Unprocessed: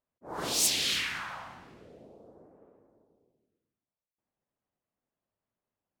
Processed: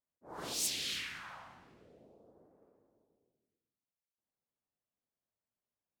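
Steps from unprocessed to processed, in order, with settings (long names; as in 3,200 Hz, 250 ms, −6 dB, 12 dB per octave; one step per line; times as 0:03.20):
0:00.54–0:01.24: parametric band 860 Hz −5 dB 1.2 octaves
level −8.5 dB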